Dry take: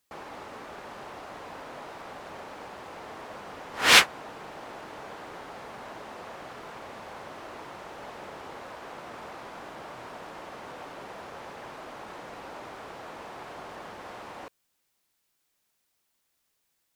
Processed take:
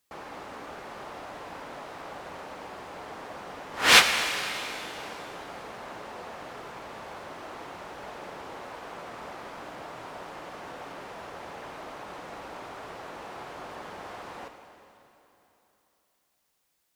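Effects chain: plate-style reverb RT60 3.2 s, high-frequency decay 0.95×, DRR 6 dB

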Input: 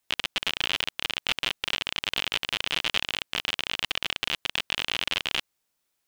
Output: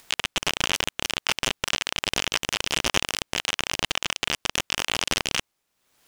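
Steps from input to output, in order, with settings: upward compressor, threshold -39 dBFS; noise-modulated delay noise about 2500 Hz, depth 0.037 ms; gain +2.5 dB

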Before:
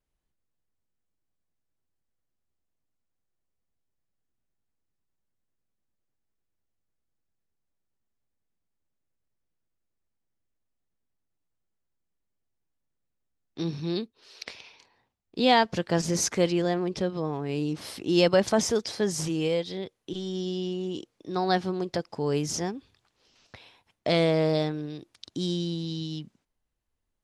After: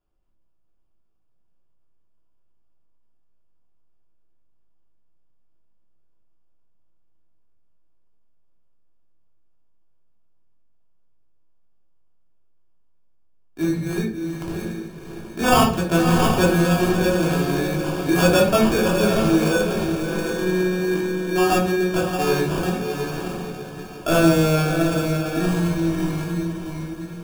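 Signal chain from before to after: diffused feedback echo 0.662 s, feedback 40%, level -5 dB; sample-and-hold 22×; shoebox room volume 510 m³, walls furnished, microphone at 3.1 m

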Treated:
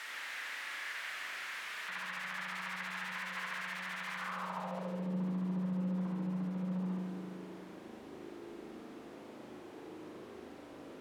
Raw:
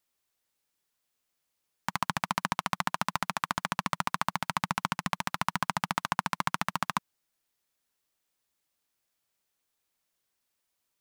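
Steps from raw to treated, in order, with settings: infinite clipping; spring tank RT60 2.1 s, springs 38 ms, chirp 20 ms, DRR -1.5 dB; band-pass sweep 1800 Hz -> 310 Hz, 4.14–5.19; gain +3.5 dB

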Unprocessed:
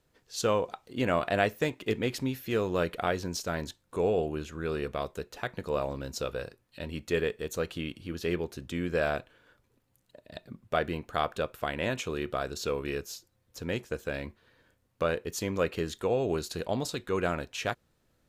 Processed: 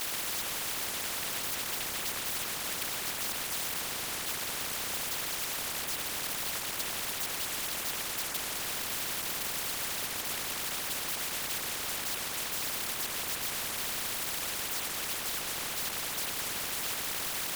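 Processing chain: zero-crossing step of -25 dBFS; HPF 1300 Hz 12 dB/oct; resonant high shelf 4500 Hz -13.5 dB, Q 3; echoes that change speed 0.121 s, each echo -7 st, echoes 3; whisperiser; speed mistake 24 fps film run at 25 fps; spectral compressor 10:1; gain -8.5 dB

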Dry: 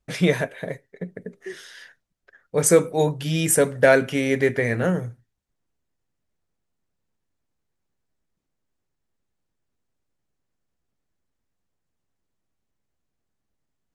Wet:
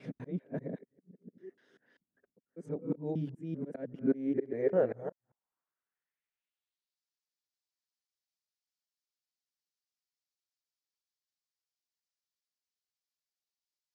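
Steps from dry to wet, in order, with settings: local time reversal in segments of 0.197 s; auto swell 0.35 s; band-pass sweep 250 Hz -> 4900 Hz, 4.15–7.01

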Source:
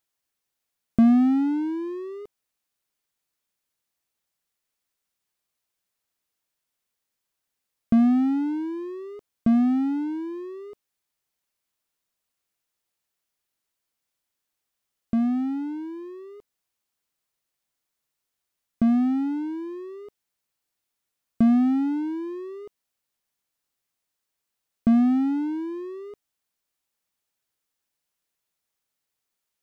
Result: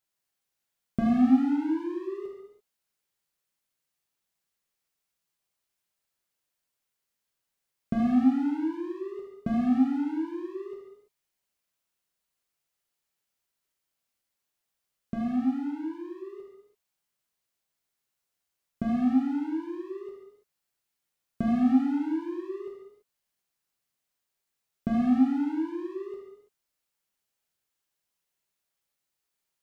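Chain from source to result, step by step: non-linear reverb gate 0.36 s falling, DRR -2.5 dB; gain -5.5 dB

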